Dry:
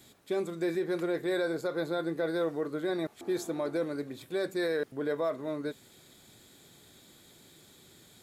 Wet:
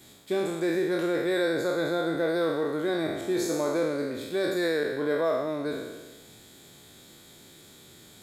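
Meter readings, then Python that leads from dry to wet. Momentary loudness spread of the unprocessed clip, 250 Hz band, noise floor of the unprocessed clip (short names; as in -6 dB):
5 LU, +4.5 dB, -58 dBFS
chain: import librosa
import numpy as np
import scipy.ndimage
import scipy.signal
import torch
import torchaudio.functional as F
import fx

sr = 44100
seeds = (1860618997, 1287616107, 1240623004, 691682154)

y = fx.spec_trails(x, sr, decay_s=1.3)
y = y * 10.0 ** (2.5 / 20.0)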